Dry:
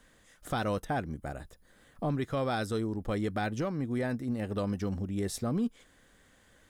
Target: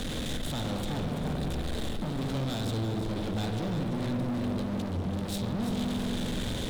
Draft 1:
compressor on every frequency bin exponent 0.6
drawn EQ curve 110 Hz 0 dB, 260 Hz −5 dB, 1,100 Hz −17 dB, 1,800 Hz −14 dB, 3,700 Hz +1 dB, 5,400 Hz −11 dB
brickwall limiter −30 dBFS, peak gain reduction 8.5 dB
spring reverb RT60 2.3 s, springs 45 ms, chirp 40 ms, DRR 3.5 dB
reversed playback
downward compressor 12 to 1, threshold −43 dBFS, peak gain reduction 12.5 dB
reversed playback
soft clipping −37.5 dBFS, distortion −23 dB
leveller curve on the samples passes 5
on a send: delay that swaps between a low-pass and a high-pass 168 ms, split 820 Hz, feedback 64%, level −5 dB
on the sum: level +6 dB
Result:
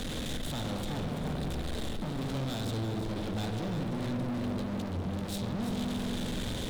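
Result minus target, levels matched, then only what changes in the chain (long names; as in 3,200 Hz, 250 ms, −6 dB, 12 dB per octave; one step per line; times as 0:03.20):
soft clipping: distortion +16 dB
change: soft clipping −28.5 dBFS, distortion −40 dB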